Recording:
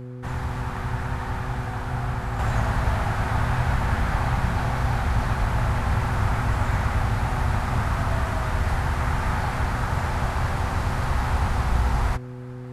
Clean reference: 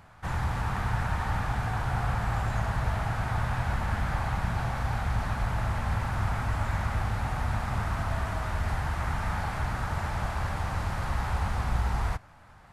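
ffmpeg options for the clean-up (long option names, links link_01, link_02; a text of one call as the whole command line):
ffmpeg -i in.wav -af "bandreject=frequency=124.8:width_type=h:width=4,bandreject=frequency=249.6:width_type=h:width=4,bandreject=frequency=374.4:width_type=h:width=4,bandreject=frequency=499.2:width_type=h:width=4,asetnsamples=nb_out_samples=441:pad=0,asendcmd='2.39 volume volume -5.5dB',volume=0dB" out.wav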